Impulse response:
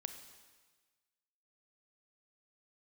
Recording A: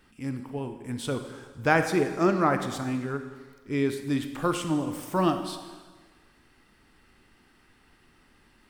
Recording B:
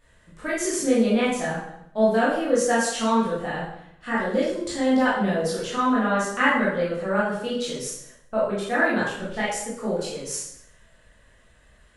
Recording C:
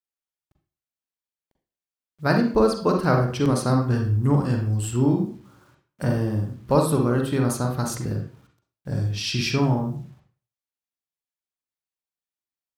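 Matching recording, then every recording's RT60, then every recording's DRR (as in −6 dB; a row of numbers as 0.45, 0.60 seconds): A; 1.4, 0.75, 0.40 seconds; 7.5, −8.5, 2.5 decibels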